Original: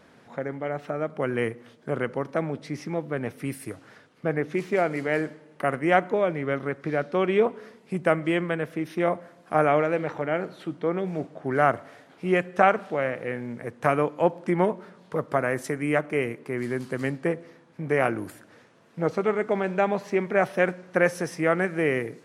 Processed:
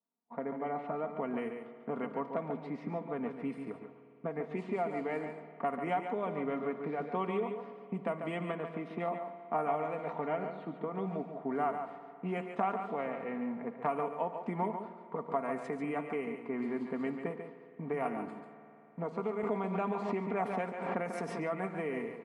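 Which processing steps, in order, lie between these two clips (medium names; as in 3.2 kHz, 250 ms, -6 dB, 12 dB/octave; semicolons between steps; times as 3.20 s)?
gate -47 dBFS, range -36 dB; level-controlled noise filter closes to 1.5 kHz, open at -18 dBFS; peaking EQ 4.2 kHz -11.5 dB 3 oct; comb 4.3 ms, depth 59%; compression, threshold -27 dBFS, peak gain reduction 12.5 dB; cabinet simulation 240–9300 Hz, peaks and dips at 320 Hz -5 dB, 500 Hz -10 dB, 1 kHz +5 dB, 1.6 kHz -9 dB, 5.8 kHz -8 dB; delay 142 ms -7.5 dB; spring tank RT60 3 s, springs 52 ms, chirp 40 ms, DRR 12.5 dB; 19.43–21.50 s: swell ahead of each attack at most 45 dB/s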